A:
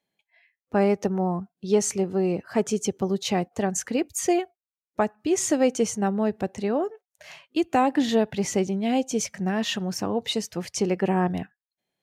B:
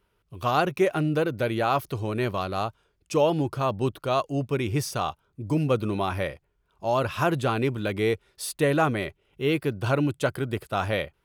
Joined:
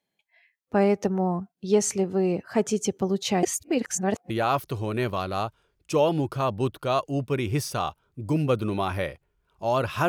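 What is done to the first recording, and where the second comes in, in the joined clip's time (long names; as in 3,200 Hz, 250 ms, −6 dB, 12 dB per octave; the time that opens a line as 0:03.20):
A
0:03.43–0:04.30: reverse
0:04.30: continue with B from 0:01.51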